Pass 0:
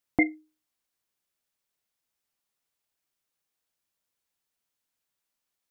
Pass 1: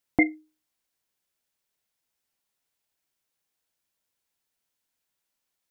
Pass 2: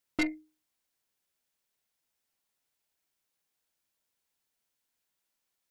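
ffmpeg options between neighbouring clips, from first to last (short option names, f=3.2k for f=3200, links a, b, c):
-af "bandreject=f=1.2k:w=16,volume=2dB"
-af "aeval=exprs='(tanh(15.8*val(0)+0.35)-tanh(0.35))/15.8':c=same,bandreject=f=50:t=h:w=6,bandreject=f=100:t=h:w=6,bandreject=f=150:t=h:w=6"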